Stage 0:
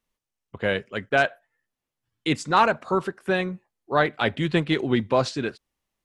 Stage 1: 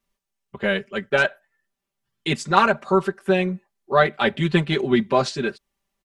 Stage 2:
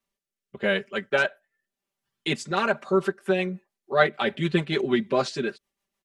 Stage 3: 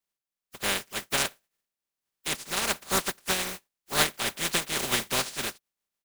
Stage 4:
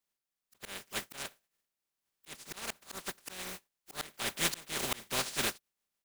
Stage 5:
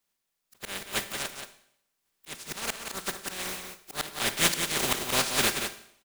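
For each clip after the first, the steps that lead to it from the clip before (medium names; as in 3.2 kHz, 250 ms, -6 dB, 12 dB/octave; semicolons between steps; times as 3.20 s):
comb 5.1 ms, depth 95%
bass shelf 130 Hz -11.5 dB; rotary cabinet horn 0.85 Hz, later 6.7 Hz, at 2.45 s
spectral contrast reduction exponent 0.2; trim -4 dB
slow attack 478 ms
delay 178 ms -7 dB; reverberation RT60 0.70 s, pre-delay 35 ms, DRR 11.5 dB; trim +7 dB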